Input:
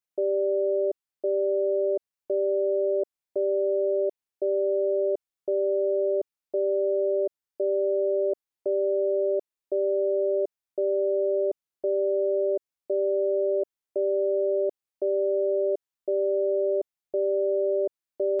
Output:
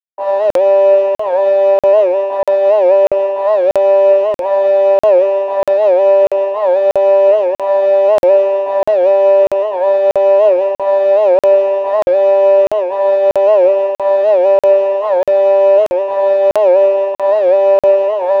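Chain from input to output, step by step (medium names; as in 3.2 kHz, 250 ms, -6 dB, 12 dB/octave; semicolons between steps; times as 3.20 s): comb filter that takes the minimum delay 1.4 ms; expander -39 dBFS; steep high-pass 280 Hz 96 dB/octave; band-stop 500 Hz, Q 13; peak limiter -26 dBFS, peak gain reduction 6 dB; hard clipper -27 dBFS, distortion -31 dB; two-band feedback delay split 600 Hz, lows 117 ms, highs 165 ms, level -4 dB; reverberation RT60 1.1 s, pre-delay 3 ms, DRR -11 dB; crackling interface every 0.64 s, samples 2048, zero, from 0.51 s; warped record 78 rpm, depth 160 cents; trim -5.5 dB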